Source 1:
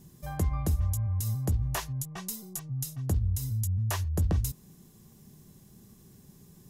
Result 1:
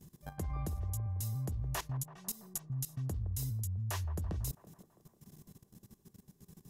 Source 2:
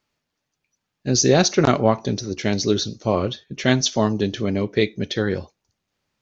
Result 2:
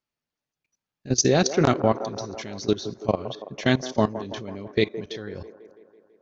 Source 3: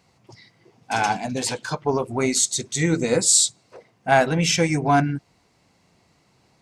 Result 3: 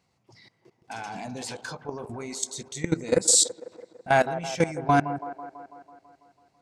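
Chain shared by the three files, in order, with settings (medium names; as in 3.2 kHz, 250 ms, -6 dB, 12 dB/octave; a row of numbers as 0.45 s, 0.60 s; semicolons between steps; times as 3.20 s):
level held to a coarse grid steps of 18 dB; feedback echo behind a band-pass 165 ms, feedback 64%, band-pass 640 Hz, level -11 dB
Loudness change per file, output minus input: -7.5 LU, -4.0 LU, -4.5 LU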